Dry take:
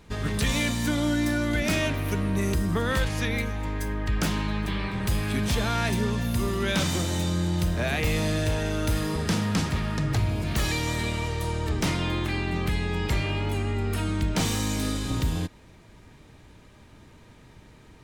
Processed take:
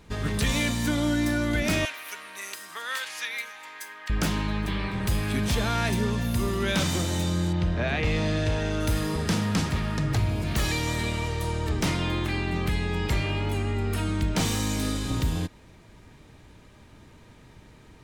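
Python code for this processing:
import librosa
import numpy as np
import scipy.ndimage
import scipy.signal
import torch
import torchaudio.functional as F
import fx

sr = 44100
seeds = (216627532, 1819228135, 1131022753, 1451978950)

y = fx.highpass(x, sr, hz=1300.0, slope=12, at=(1.85, 4.1))
y = fx.lowpass(y, sr, hz=fx.line((7.52, 3100.0), (8.79, 7100.0)), slope=12, at=(7.52, 8.79), fade=0.02)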